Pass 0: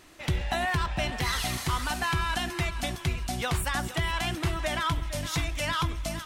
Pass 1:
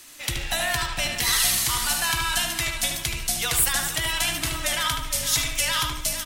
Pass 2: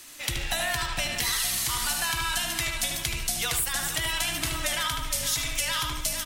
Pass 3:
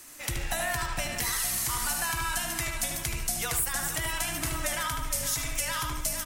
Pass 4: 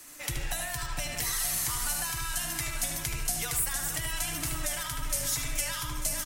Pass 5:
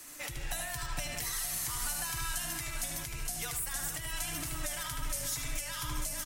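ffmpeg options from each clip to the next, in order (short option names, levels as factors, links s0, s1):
-filter_complex "[0:a]afreqshift=-25,asplit=2[s0][s1];[s1]adelay=75,lowpass=f=3600:p=1,volume=0.668,asplit=2[s2][s3];[s3]adelay=75,lowpass=f=3600:p=1,volume=0.43,asplit=2[s4][s5];[s5]adelay=75,lowpass=f=3600:p=1,volume=0.43,asplit=2[s6][s7];[s7]adelay=75,lowpass=f=3600:p=1,volume=0.43,asplit=2[s8][s9];[s9]adelay=75,lowpass=f=3600:p=1,volume=0.43[s10];[s0][s2][s4][s6][s8][s10]amix=inputs=6:normalize=0,crystalizer=i=8.5:c=0,volume=0.562"
-af "acompressor=threshold=0.0631:ratio=6"
-af "equalizer=f=3500:t=o:w=1.1:g=-9"
-filter_complex "[0:a]aecho=1:1:6.8:0.32,acrossover=split=140|3000[s0][s1][s2];[s1]acompressor=threshold=0.0158:ratio=6[s3];[s0][s3][s2]amix=inputs=3:normalize=0,aecho=1:1:893:0.2,volume=0.891"
-af "alimiter=limit=0.0631:level=0:latency=1:release=393"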